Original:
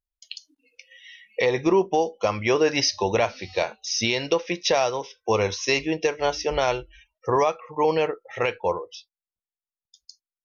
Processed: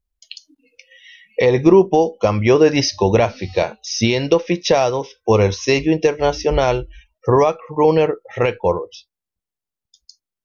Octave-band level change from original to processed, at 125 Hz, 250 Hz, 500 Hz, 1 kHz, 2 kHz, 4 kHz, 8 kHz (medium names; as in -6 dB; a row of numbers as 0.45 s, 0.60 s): +13.0 dB, +10.0 dB, +8.0 dB, +4.5 dB, +2.5 dB, +2.0 dB, no reading